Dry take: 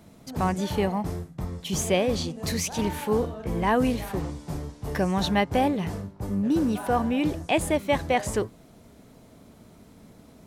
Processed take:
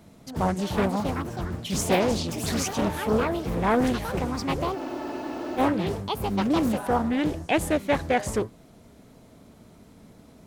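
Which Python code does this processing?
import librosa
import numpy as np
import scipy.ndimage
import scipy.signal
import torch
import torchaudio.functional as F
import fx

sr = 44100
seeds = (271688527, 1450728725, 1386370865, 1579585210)

y = fx.echo_pitch(x, sr, ms=466, semitones=5, count=2, db_per_echo=-6.0)
y = fx.spec_freeze(y, sr, seeds[0], at_s=4.78, hold_s=0.8)
y = fx.doppler_dist(y, sr, depth_ms=0.47)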